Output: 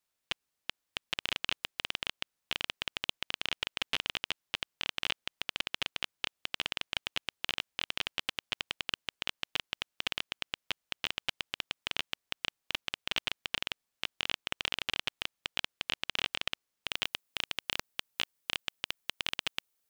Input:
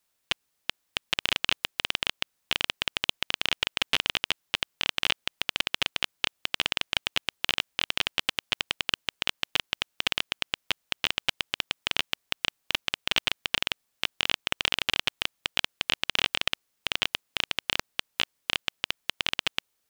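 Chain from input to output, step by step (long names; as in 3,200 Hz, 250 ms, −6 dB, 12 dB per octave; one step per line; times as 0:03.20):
high-shelf EQ 8,700 Hz −3.5 dB, from 0:16.87 +6.5 dB
level −7 dB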